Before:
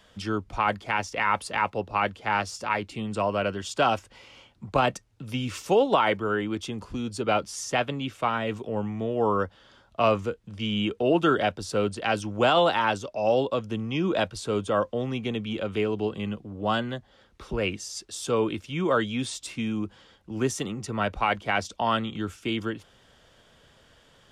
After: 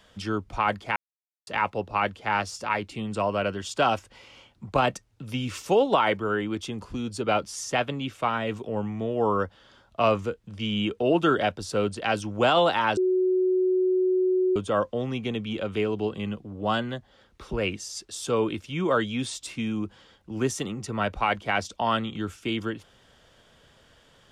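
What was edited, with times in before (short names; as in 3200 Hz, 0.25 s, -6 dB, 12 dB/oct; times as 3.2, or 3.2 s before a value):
0.96–1.47 mute
12.97–14.56 bleep 370 Hz -19.5 dBFS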